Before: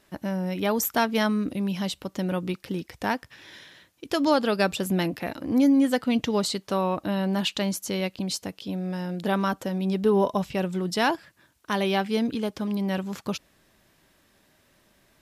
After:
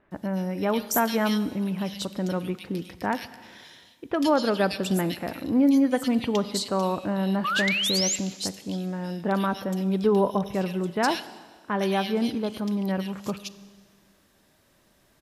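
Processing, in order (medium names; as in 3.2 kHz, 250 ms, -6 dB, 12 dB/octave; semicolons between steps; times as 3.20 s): bands offset in time lows, highs 110 ms, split 2.3 kHz; painted sound rise, 7.44–8.16 s, 1.1–7.7 kHz -26 dBFS; Schroeder reverb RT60 1.7 s, combs from 31 ms, DRR 15 dB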